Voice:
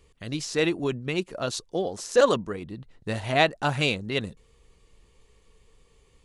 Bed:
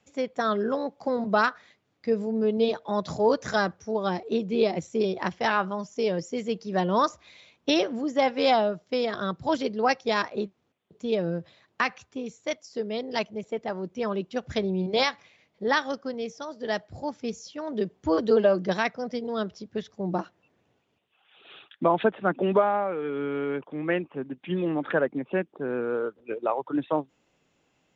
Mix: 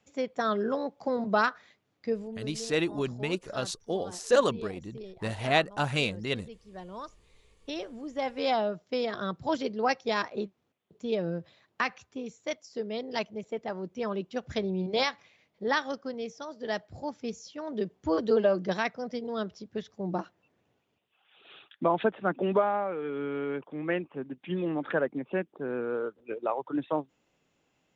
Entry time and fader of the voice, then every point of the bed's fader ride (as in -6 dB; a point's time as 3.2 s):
2.15 s, -3.5 dB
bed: 2.03 s -2.5 dB
2.55 s -18.5 dB
7.27 s -18.5 dB
8.74 s -3.5 dB